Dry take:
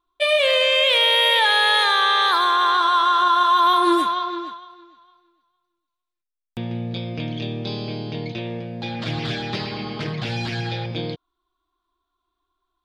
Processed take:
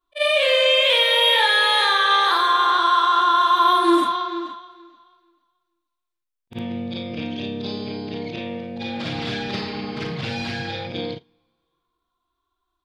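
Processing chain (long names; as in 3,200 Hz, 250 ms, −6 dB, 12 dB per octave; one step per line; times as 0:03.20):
every overlapping window played backwards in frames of 111 ms
coupled-rooms reverb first 0.25 s, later 1.9 s, from −22 dB, DRR 19 dB
level +3 dB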